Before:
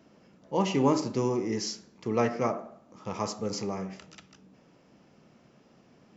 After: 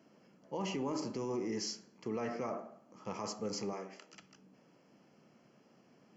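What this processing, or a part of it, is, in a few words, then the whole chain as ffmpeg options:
PA system with an anti-feedback notch: -filter_complex "[0:a]asettb=1/sr,asplit=3[a][b][c];[a]atrim=end=3.734[d];[b]atrim=start=3.73:end=4.13,asetpts=PTS-STARTPTS,afade=t=in:d=0.004:c=qsin,afade=t=out:st=0.396:d=0.004:c=qsin,highpass=f=260:w=0.5412,highpass=f=260:w=1.3066[e];[c]atrim=start=4.126[f];[d][e]acrossfade=d=0.004:c1=hsin:c2=qsin[g];[g][f]acrossfade=d=0.004:c1=qsin:c2=hsin,highpass=140,asuperstop=centerf=3700:order=4:qfactor=6.5,alimiter=limit=-24dB:level=0:latency=1:release=27,volume=-5dB"

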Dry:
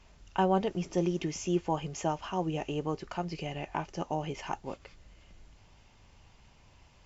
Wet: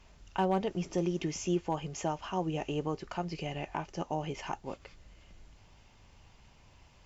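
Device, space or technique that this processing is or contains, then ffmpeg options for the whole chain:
clipper into limiter: -af "asoftclip=type=hard:threshold=-18.5dB,alimiter=limit=-21dB:level=0:latency=1:release=330"

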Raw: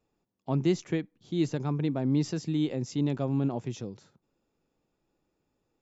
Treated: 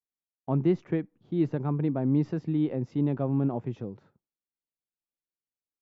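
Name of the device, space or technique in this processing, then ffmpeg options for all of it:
hearing-loss simulation: -af "lowpass=1.6k,agate=range=-33dB:threshold=-55dB:ratio=3:detection=peak,volume=1.5dB"

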